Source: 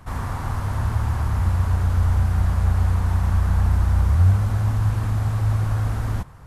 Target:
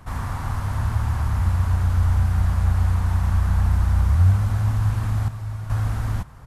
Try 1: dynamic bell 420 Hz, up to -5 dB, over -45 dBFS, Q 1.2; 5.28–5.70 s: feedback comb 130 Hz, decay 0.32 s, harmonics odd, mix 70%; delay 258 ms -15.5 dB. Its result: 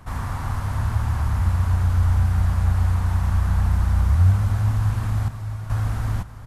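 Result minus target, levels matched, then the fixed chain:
echo-to-direct +9.5 dB
dynamic bell 420 Hz, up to -5 dB, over -45 dBFS, Q 1.2; 5.28–5.70 s: feedback comb 130 Hz, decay 0.32 s, harmonics odd, mix 70%; delay 258 ms -25 dB

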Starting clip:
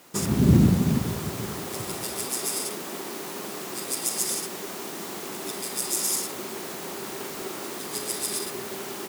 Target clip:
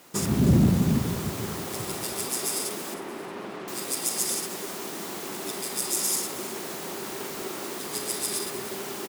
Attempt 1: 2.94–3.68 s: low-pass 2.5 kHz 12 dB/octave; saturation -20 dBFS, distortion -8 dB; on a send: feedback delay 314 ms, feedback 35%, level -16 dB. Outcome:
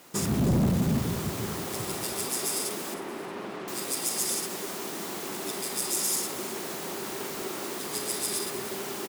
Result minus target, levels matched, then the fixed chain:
saturation: distortion +9 dB
2.94–3.68 s: low-pass 2.5 kHz 12 dB/octave; saturation -11 dBFS, distortion -17 dB; on a send: feedback delay 314 ms, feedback 35%, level -16 dB

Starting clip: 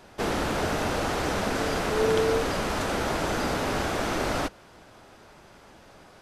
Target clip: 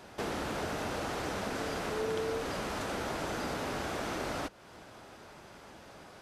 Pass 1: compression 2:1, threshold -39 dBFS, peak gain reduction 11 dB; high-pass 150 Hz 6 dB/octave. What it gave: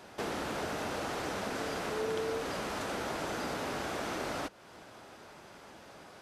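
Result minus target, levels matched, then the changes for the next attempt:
125 Hz band -2.5 dB
change: high-pass 59 Hz 6 dB/octave

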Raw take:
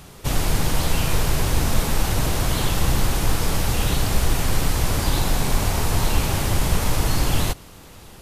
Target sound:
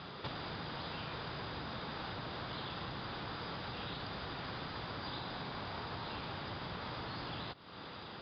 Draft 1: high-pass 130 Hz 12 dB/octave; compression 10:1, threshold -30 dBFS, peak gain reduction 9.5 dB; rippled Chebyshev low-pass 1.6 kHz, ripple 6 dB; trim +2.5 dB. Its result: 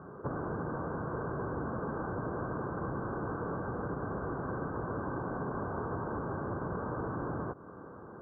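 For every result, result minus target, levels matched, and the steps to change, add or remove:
compression: peak gain reduction -6.5 dB; 2 kHz band -4.5 dB
change: compression 10:1, threshold -37.5 dBFS, peak gain reduction 16 dB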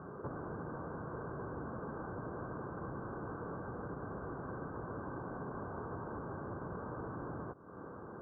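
2 kHz band -4.5 dB
change: rippled Chebyshev low-pass 5 kHz, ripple 6 dB

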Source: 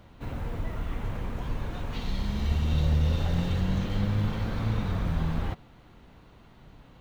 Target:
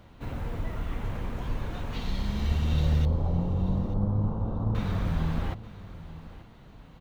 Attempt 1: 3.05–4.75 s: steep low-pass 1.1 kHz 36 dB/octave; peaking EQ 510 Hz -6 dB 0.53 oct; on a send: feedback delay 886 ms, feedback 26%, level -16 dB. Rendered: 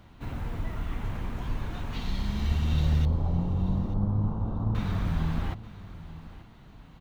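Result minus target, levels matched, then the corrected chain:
500 Hz band -3.5 dB
3.05–4.75 s: steep low-pass 1.1 kHz 36 dB/octave; on a send: feedback delay 886 ms, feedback 26%, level -16 dB

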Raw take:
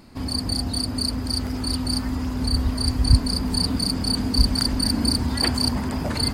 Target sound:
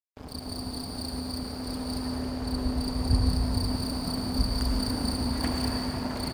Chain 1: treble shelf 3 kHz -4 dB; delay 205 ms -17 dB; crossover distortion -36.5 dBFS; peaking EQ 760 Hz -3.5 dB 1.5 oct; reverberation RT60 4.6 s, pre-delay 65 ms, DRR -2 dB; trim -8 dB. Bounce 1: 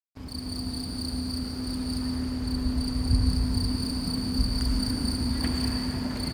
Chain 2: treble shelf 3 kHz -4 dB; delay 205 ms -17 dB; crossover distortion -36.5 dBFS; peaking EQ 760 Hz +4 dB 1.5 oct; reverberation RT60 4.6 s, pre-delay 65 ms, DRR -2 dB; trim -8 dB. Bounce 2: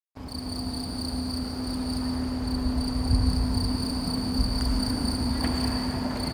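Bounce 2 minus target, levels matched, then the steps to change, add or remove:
crossover distortion: distortion -8 dB
change: crossover distortion -29 dBFS

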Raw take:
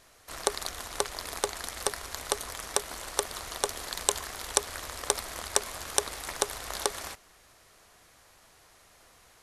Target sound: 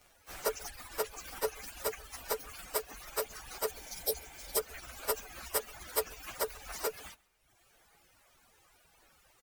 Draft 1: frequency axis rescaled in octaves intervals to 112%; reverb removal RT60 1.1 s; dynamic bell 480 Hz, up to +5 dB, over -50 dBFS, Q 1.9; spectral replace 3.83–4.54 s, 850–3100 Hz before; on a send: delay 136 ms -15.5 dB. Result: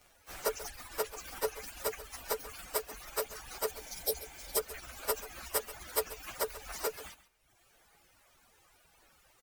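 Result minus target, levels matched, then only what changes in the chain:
echo-to-direct +9 dB
change: delay 136 ms -24.5 dB

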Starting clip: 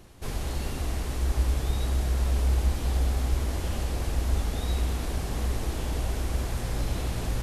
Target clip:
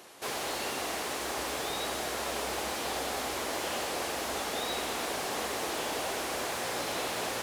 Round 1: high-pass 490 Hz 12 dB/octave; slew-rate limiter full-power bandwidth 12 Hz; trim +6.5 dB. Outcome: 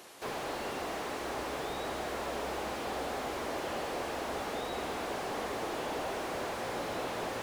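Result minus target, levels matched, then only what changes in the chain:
slew-rate limiter: distortion +12 dB
change: slew-rate limiter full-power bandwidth 46 Hz

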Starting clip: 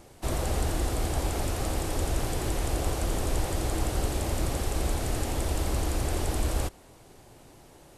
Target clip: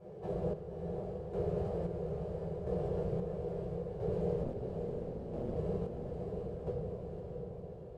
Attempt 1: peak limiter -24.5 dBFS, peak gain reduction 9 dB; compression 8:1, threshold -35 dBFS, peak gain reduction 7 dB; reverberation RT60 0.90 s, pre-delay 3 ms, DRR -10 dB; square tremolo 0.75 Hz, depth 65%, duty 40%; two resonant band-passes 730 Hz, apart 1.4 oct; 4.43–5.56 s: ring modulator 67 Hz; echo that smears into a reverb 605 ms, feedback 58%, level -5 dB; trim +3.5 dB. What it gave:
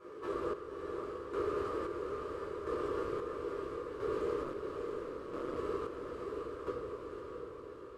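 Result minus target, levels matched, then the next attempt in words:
1 kHz band +7.5 dB
peak limiter -24.5 dBFS, peak gain reduction 9 dB; compression 8:1, threshold -35 dBFS, peak gain reduction 7 dB; reverberation RT60 0.90 s, pre-delay 3 ms, DRR -10 dB; square tremolo 0.75 Hz, depth 65%, duty 40%; two resonant band-passes 280 Hz, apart 1.4 oct; 4.43–5.56 s: ring modulator 67 Hz; echo that smears into a reverb 605 ms, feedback 58%, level -5 dB; trim +3.5 dB

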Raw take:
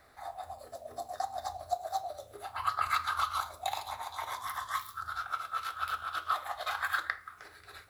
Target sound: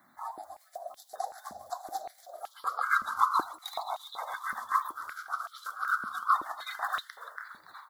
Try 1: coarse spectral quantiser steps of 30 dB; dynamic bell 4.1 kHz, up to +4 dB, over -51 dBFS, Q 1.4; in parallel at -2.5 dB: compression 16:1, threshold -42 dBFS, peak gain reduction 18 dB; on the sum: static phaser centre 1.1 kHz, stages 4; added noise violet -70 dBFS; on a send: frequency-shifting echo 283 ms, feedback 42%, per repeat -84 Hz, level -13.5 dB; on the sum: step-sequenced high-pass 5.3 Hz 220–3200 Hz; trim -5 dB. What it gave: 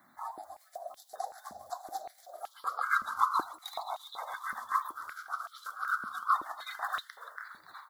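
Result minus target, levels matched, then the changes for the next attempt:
compression: peak gain reduction +11 dB
change: compression 16:1, threshold -30.5 dBFS, peak gain reduction 7.5 dB

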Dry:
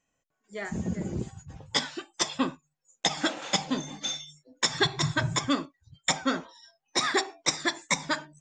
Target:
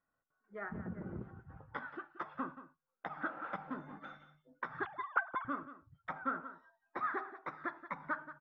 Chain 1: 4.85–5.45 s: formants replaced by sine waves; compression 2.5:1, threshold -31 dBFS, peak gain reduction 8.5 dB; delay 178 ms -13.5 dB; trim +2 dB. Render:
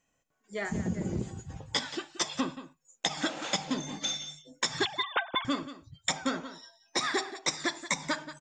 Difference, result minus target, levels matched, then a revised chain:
2 kHz band -3.0 dB
4.85–5.45 s: formants replaced by sine waves; compression 2.5:1, threshold -31 dBFS, peak gain reduction 8.5 dB; four-pole ladder low-pass 1.5 kHz, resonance 70%; delay 178 ms -13.5 dB; trim +2 dB

